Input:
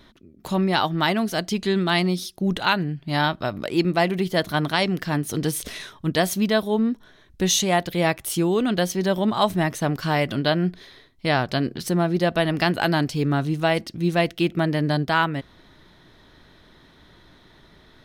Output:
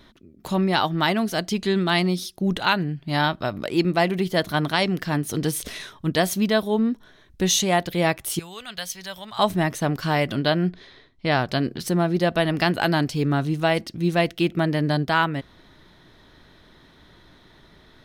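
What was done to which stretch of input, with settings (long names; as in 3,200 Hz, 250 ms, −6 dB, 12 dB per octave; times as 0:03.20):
0:08.39–0:09.39: guitar amp tone stack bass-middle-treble 10-0-10
0:10.69–0:11.32: high-frequency loss of the air 81 metres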